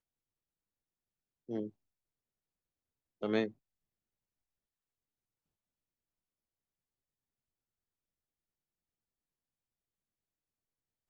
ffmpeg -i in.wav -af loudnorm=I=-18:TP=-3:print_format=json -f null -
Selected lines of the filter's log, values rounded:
"input_i" : "-37.8",
"input_tp" : "-18.1",
"input_lra" : "7.8",
"input_thresh" : "-48.5",